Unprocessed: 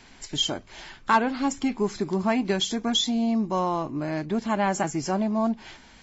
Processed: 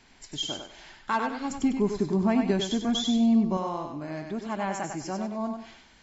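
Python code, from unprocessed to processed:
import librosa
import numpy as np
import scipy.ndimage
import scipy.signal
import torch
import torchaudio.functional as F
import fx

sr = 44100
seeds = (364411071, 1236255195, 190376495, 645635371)

y = fx.low_shelf(x, sr, hz=470.0, db=10.5, at=(1.5, 3.57))
y = fx.echo_thinned(y, sr, ms=97, feedback_pct=31, hz=360.0, wet_db=-4.5)
y = y * 10.0 ** (-7.0 / 20.0)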